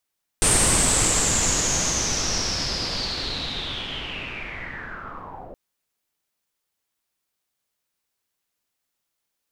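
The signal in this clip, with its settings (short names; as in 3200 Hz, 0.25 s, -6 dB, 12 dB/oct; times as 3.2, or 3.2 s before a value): swept filtered noise pink, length 5.12 s lowpass, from 8800 Hz, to 570 Hz, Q 7.9, linear, gain ramp -20.5 dB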